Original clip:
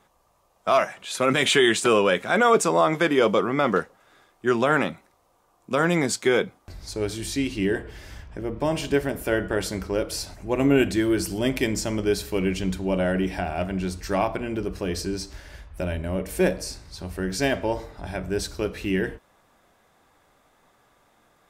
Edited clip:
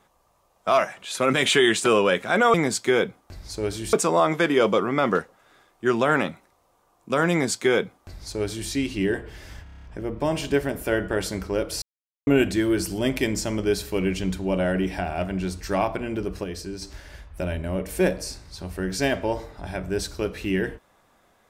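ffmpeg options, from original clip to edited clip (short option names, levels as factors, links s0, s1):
-filter_complex "[0:a]asplit=14[s0][s1][s2][s3][s4][s5][s6][s7][s8][s9][s10][s11][s12][s13];[s0]atrim=end=2.542[s14];[s1]atrim=start=5.918:end=7.312[s15];[s2]atrim=start=2.538:end=8.272[s16];[s3]atrim=start=8.238:end=8.272[s17];[s4]atrim=start=8.238:end=8.272[s18];[s5]atrim=start=8.238:end=8.272[s19];[s6]atrim=start=8.238:end=8.272[s20];[s7]atrim=start=8.238:end=8.272[s21];[s8]atrim=start=8.238:end=8.272[s22];[s9]atrim=start=8.238:end=10.22,asetpts=PTS-STARTPTS,afade=t=out:st=1.978:d=0.004:c=hsin[s23];[s10]atrim=start=10.22:end=10.67,asetpts=PTS-STARTPTS,volume=0[s24];[s11]atrim=start=10.67:end=14.842,asetpts=PTS-STARTPTS,afade=t=in:d=0.004:c=hsin[s25];[s12]atrim=start=14.838:end=15.222,asetpts=PTS-STARTPTS,volume=0.531[s26];[s13]atrim=start=15.218[s27];[s14][s15]acrossfade=d=0.004:c1=hsin:c2=hsin[s28];[s28][s16]acrossfade=d=0.004:c1=hsin:c2=hsin[s29];[s29][s17]acrossfade=d=0.004:c1=hsin:c2=hsin[s30];[s30][s18]acrossfade=d=0.004:c1=hsin:c2=hsin[s31];[s31][s19]acrossfade=d=0.004:c1=hsin:c2=hsin[s32];[s32][s20]acrossfade=d=0.004:c1=hsin:c2=hsin[s33];[s33][s21]acrossfade=d=0.004:c1=hsin:c2=hsin[s34];[s34][s22]acrossfade=d=0.004:c1=hsin:c2=hsin[s35];[s23][s24][s25]concat=n=3:v=0:a=1[s36];[s35][s36]acrossfade=d=0.004:c1=hsin:c2=hsin[s37];[s37][s26]acrossfade=d=0.004:c1=hsin:c2=hsin[s38];[s38][s27]acrossfade=d=0.004:c1=hsin:c2=hsin"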